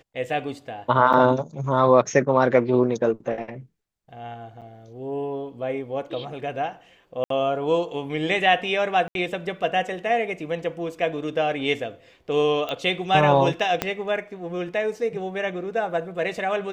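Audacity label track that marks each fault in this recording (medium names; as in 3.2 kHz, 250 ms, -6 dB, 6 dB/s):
1.130000	1.140000	dropout 6.8 ms
4.610000	4.620000	dropout 7.6 ms
7.240000	7.300000	dropout 63 ms
9.080000	9.150000	dropout 72 ms
12.690000	12.690000	pop -16 dBFS
13.820000	13.820000	pop -7 dBFS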